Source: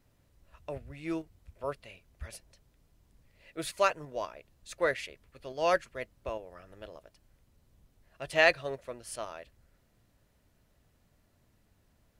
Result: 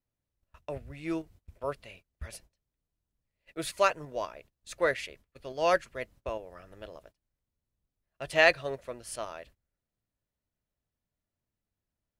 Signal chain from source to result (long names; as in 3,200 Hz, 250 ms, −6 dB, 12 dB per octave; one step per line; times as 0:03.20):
noise gate −55 dBFS, range −22 dB
level +1.5 dB